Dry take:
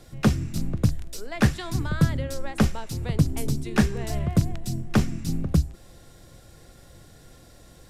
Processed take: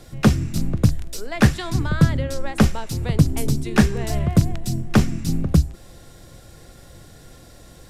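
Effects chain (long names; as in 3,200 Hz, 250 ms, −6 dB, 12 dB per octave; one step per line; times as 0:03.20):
0:01.70–0:02.46: high-shelf EQ 10,000 Hz −7.5 dB
level +5 dB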